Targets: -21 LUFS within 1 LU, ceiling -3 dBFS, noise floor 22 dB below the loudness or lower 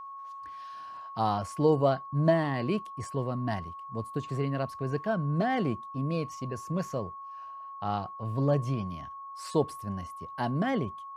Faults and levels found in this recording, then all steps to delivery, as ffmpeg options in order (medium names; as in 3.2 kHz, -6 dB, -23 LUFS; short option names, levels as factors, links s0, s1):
steady tone 1.1 kHz; tone level -40 dBFS; loudness -31.0 LUFS; peak level -11.0 dBFS; loudness target -21.0 LUFS
-> -af "bandreject=f=1100:w=30"
-af "volume=3.16,alimiter=limit=0.708:level=0:latency=1"